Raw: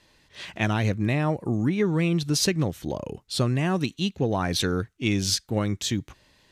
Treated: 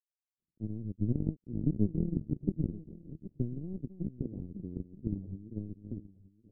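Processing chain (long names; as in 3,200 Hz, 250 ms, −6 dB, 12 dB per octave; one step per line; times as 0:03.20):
delay that plays each chunk backwards 479 ms, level −4 dB
power curve on the samples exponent 3
inverse Chebyshev low-pass filter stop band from 1,400 Hz, stop band 70 dB
on a send: single-tap delay 925 ms −18 dB
on the sum: level +5.5 dB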